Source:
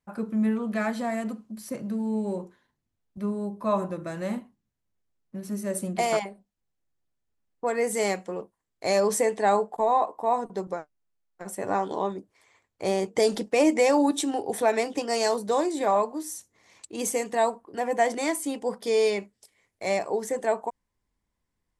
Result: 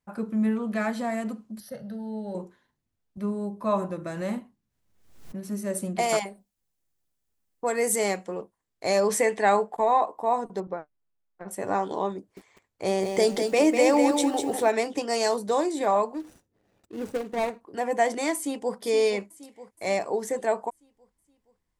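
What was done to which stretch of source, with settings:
0:01.60–0:02.35: phaser with its sweep stopped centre 1,600 Hz, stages 8
0:04.05–0:05.40: background raised ahead of every attack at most 73 dB per second
0:06.09–0:07.96: high-shelf EQ 5,600 Hz +11 dB
0:09.09–0:10.01: parametric band 2,100 Hz +6.5 dB 1.2 octaves
0:10.60–0:11.51: high-frequency loss of the air 310 metres
0:12.17–0:14.68: feedback echo at a low word length 198 ms, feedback 35%, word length 8 bits, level −5.5 dB
0:16.14–0:17.61: running median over 41 samples
0:18.36–0:18.76: delay throw 470 ms, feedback 55%, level −11.5 dB

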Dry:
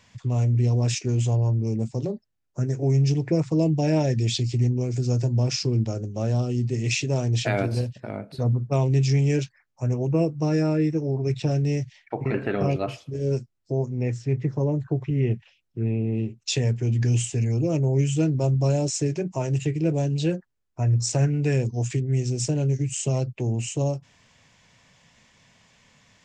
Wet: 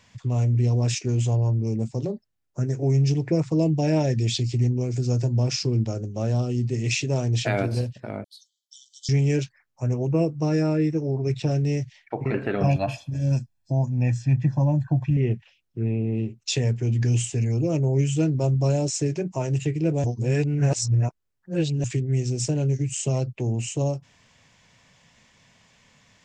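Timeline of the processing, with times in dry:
0:08.24–0:09.09: linear-phase brick-wall high-pass 3,000 Hz
0:12.63–0:15.17: comb filter 1.2 ms, depth 96%
0:20.04–0:21.84: reverse

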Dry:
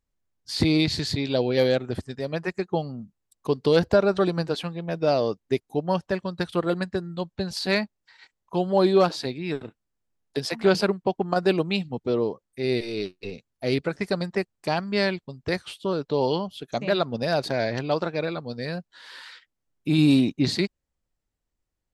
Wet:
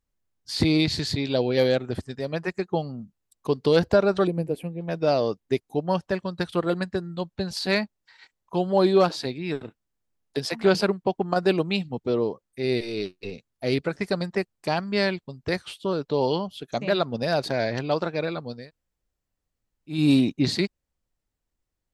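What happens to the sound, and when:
0:04.27–0:04.81: drawn EQ curve 510 Hz 0 dB, 1,400 Hz −22 dB, 2,400 Hz −6 dB, 3,800 Hz −22 dB, 6,400 Hz −17 dB, 9,700 Hz +2 dB
0:18.59–0:19.98: fill with room tone, crossfade 0.24 s

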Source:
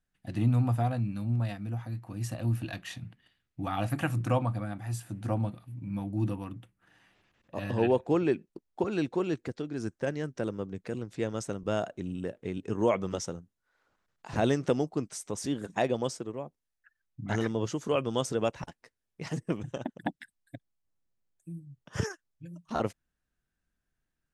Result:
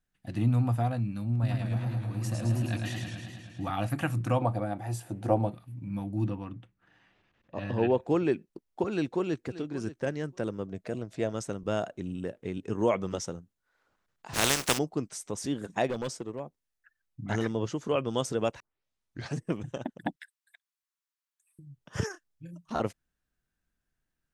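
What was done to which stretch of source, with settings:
0:01.32–0:03.71: feedback echo with a swinging delay time 107 ms, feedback 73%, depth 111 cents, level −3 dB
0:04.41–0:05.54: flat-topped bell 540 Hz +9 dB
0:06.25–0:08.00: high-frequency loss of the air 100 metres
0:08.90–0:09.51: delay throw 580 ms, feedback 10%, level −15 dB
0:10.68–0:11.32: parametric band 640 Hz +15 dB 0.2 octaves
0:14.33–0:14.77: compressing power law on the bin magnitudes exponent 0.27
0:15.87–0:16.40: hard clipping −28 dBFS
0:17.59–0:18.08: high-shelf EQ 8,500 Hz −11 dB
0:18.60: tape start 0.79 s
0:20.16–0:21.59: Butterworth high-pass 960 Hz 48 dB per octave
0:22.11–0:22.53: double-tracking delay 31 ms −8 dB

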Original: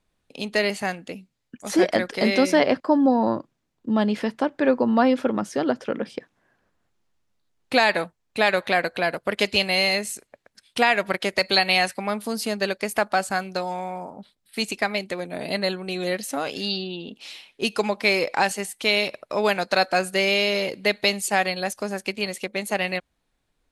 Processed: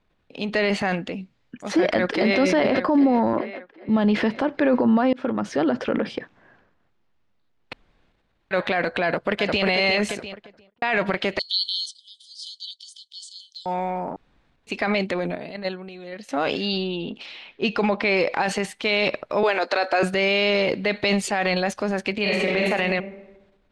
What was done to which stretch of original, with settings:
0:01.74–0:02.39: delay throw 400 ms, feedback 55%, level −12 dB
0:03.33–0:03.89: three-way crossover with the lows and the highs turned down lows −12 dB, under 270 Hz, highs −21 dB, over 3,200 Hz
0:05.13–0:05.72: fade in equal-power
0:07.73–0:08.51: fill with room tone
0:09.04–0:09.64: delay throw 350 ms, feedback 40%, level −8 dB
0:10.14–0:10.82: fade out and dull
0:11.39–0:13.66: linear-phase brick-wall band-pass 3,000–10,000 Hz
0:14.16–0:14.67: fill with room tone
0:15.35–0:16.29: noise gate −22 dBFS, range −15 dB
0:17.26–0:18.17: high-frequency loss of the air 85 metres
0:19.43–0:20.03: Butterworth high-pass 280 Hz
0:22.21–0:22.70: thrown reverb, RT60 1.1 s, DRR −2.5 dB
whole clip: low-pass filter 3,400 Hz 12 dB per octave; transient designer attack −2 dB, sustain +8 dB; brickwall limiter −15 dBFS; level +4 dB

